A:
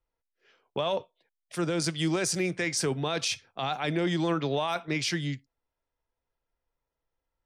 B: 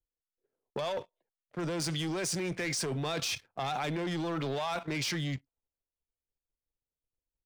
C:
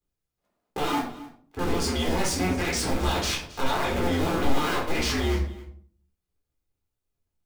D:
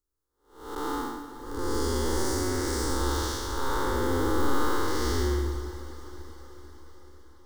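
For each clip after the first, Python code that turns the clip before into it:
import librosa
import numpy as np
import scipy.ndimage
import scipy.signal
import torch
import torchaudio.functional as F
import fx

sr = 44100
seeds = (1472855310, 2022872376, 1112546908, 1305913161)

y1 = fx.env_lowpass(x, sr, base_hz=440.0, full_db=-26.5)
y1 = fx.leveller(y1, sr, passes=2)
y1 = fx.level_steps(y1, sr, step_db=11)
y2 = fx.cycle_switch(y1, sr, every=2, mode='inverted')
y2 = y2 + 10.0 ** (-19.0 / 20.0) * np.pad(y2, (int(269 * sr / 1000.0), 0))[:len(y2)]
y2 = fx.room_shoebox(y2, sr, seeds[0], volume_m3=470.0, walls='furnished', distance_m=3.9)
y3 = fx.spec_blur(y2, sr, span_ms=321.0)
y3 = fx.fixed_phaser(y3, sr, hz=670.0, stages=6)
y3 = fx.echo_diffused(y3, sr, ms=461, feedback_pct=59, wet_db=-15)
y3 = y3 * librosa.db_to_amplitude(3.0)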